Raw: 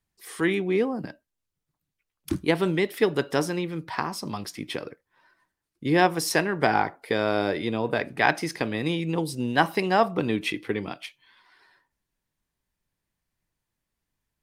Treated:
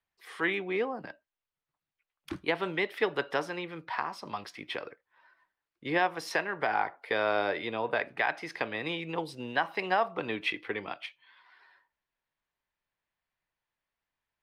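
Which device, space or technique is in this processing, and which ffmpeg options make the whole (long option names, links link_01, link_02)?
DJ mixer with the lows and highs turned down: -filter_complex "[0:a]acrossover=split=510 3900:gain=0.2 1 0.126[link_01][link_02][link_03];[link_01][link_02][link_03]amix=inputs=3:normalize=0,alimiter=limit=-15.5dB:level=0:latency=1:release=300"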